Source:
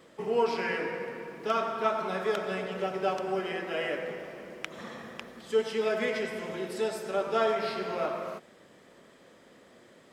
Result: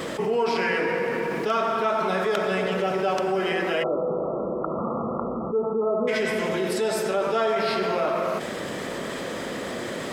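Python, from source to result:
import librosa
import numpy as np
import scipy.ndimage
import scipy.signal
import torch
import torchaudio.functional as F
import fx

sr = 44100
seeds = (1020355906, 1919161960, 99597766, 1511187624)

y = fx.brickwall_lowpass(x, sr, high_hz=1400.0, at=(3.82, 6.07), fade=0.02)
y = fx.env_flatten(y, sr, amount_pct=70)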